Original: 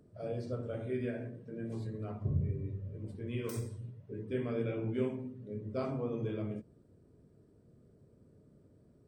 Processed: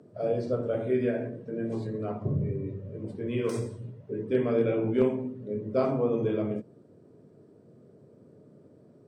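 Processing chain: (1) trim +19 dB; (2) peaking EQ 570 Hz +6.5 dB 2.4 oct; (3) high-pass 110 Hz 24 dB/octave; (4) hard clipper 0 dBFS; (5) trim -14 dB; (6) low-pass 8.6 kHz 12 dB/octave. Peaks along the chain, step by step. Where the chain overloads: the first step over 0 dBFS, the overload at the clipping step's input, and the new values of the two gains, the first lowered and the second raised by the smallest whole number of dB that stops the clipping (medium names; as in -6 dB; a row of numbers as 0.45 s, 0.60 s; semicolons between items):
-1.5 dBFS, +2.5 dBFS, +3.5 dBFS, 0.0 dBFS, -14.0 dBFS, -14.0 dBFS; step 2, 3.5 dB; step 1 +15 dB, step 5 -10 dB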